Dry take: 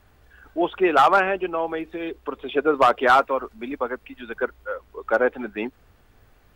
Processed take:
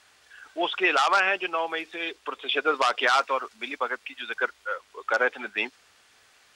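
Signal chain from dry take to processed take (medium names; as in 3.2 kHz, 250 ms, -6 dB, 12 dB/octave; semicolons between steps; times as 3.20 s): frequency weighting ITU-R 468; peak limiter -11.5 dBFS, peak gain reduction 10 dB; dynamic bell 5.2 kHz, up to +5 dB, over -46 dBFS, Q 2.1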